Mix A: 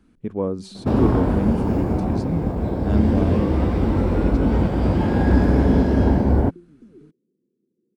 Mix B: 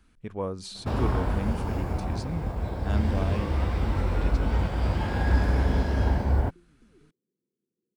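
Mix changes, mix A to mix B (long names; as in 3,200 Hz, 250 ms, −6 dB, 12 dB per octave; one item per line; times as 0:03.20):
speech +3.0 dB
master: add parametric band 270 Hz −14.5 dB 2.6 octaves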